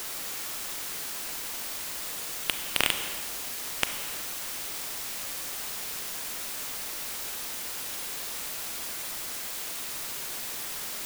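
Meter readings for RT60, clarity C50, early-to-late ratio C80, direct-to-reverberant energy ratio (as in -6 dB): no single decay rate, 8.0 dB, 9.0 dB, 7.0 dB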